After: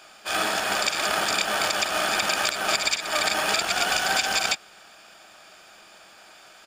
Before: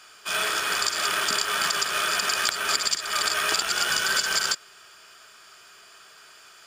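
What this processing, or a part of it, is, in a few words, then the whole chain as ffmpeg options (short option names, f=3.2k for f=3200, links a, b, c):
octave pedal: -filter_complex "[0:a]asplit=2[a][b];[b]asetrate=22050,aresample=44100,atempo=2,volume=0dB[c];[a][c]amix=inputs=2:normalize=0,volume=-2dB"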